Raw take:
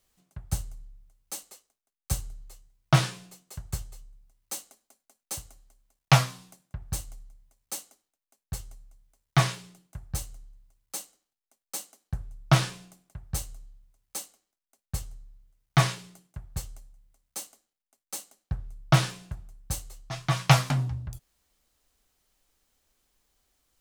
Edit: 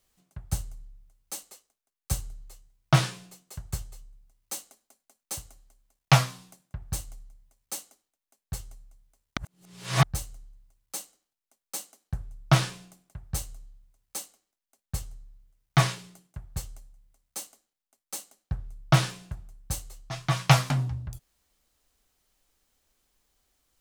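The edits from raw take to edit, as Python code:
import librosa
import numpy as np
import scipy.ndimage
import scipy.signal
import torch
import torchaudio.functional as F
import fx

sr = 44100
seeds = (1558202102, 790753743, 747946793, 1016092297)

y = fx.edit(x, sr, fx.reverse_span(start_s=9.37, length_s=0.66), tone=tone)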